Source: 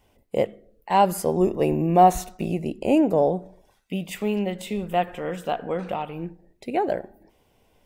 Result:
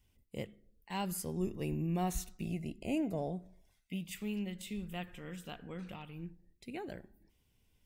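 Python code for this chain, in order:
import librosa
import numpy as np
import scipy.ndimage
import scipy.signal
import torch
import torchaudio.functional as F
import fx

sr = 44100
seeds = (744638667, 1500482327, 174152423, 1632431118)

y = fx.tone_stack(x, sr, knobs='6-0-2')
y = fx.small_body(y, sr, hz=(670.0, 2100.0), ring_ms=40, db=13, at=(2.45, 3.99))
y = y * librosa.db_to_amplitude(6.5)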